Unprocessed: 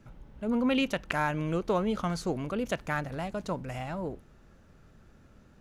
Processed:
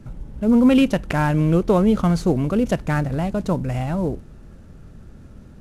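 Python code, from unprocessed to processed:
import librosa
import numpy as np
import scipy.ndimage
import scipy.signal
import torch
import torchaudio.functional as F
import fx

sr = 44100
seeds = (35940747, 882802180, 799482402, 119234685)

y = fx.cvsd(x, sr, bps=64000)
y = fx.low_shelf(y, sr, hz=480.0, db=11.5)
y = y * librosa.db_to_amplitude(4.5)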